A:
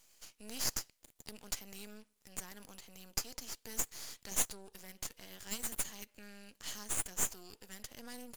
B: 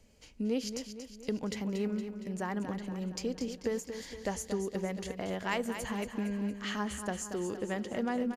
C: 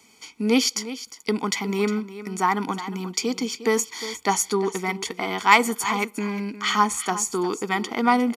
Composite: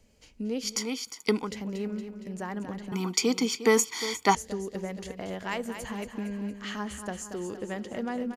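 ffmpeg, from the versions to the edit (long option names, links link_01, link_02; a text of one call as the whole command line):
ffmpeg -i take0.wav -i take1.wav -i take2.wav -filter_complex "[2:a]asplit=2[link_01][link_02];[1:a]asplit=3[link_03][link_04][link_05];[link_03]atrim=end=0.85[link_06];[link_01]atrim=start=0.61:end=1.52[link_07];[link_04]atrim=start=1.28:end=2.922[link_08];[link_02]atrim=start=2.918:end=4.352[link_09];[link_05]atrim=start=4.348[link_10];[link_06][link_07]acrossfade=duration=0.24:curve1=tri:curve2=tri[link_11];[link_11][link_08]acrossfade=duration=0.24:curve1=tri:curve2=tri[link_12];[link_12][link_09]acrossfade=duration=0.004:curve1=hsin:curve2=hsin[link_13];[link_13][link_10]acrossfade=duration=0.004:curve1=hsin:curve2=hsin" out.wav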